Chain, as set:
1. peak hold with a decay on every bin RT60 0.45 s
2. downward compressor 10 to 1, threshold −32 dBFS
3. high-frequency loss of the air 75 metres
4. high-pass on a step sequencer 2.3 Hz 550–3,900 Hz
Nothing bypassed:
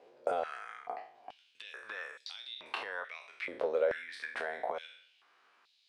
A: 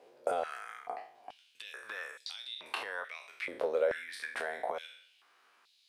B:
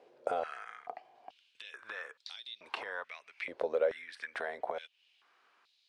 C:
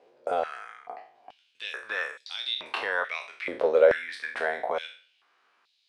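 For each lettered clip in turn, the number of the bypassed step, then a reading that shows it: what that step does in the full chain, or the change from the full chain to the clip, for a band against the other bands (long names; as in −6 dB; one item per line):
3, 4 kHz band +1.5 dB
1, change in momentary loudness spread +2 LU
2, average gain reduction 7.0 dB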